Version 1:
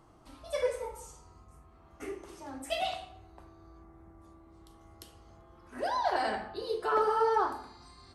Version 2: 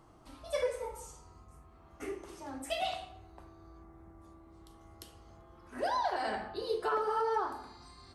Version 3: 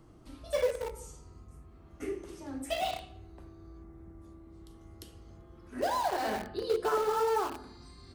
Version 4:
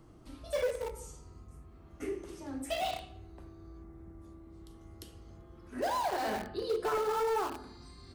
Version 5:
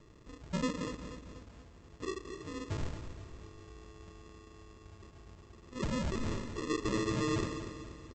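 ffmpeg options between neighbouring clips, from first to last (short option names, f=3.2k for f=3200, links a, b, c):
-af "alimiter=limit=-22.5dB:level=0:latency=1:release=308"
-filter_complex "[0:a]acrossover=split=570|1100[a][b][c];[a]acontrast=36[d];[b]acrusher=bits=6:mix=0:aa=0.000001[e];[d][e][c]amix=inputs=3:normalize=0"
-af "asoftclip=type=tanh:threshold=-24.5dB"
-af "aresample=16000,acrusher=samples=21:mix=1:aa=0.000001,aresample=44100,aecho=1:1:241|482|723|964|1205:0.316|0.152|0.0729|0.035|0.0168,volume=-2dB"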